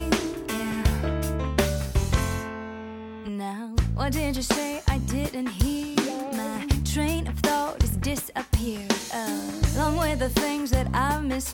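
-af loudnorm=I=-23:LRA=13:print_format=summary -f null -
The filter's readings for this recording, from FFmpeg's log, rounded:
Input Integrated:    -26.5 LUFS
Input True Peak:      -8.1 dBTP
Input LRA:             2.2 LU
Input Threshold:     -36.6 LUFS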